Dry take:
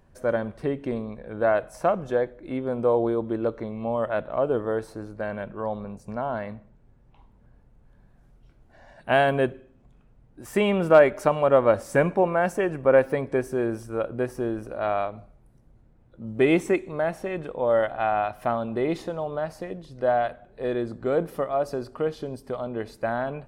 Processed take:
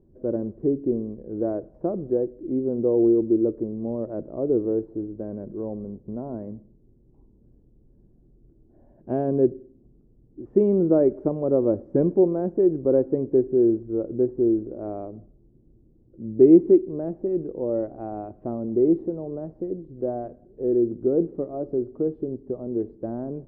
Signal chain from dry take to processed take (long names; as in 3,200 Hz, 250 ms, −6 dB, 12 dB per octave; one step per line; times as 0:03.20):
low-pass with resonance 350 Hz, resonance Q 3.5
level −1.5 dB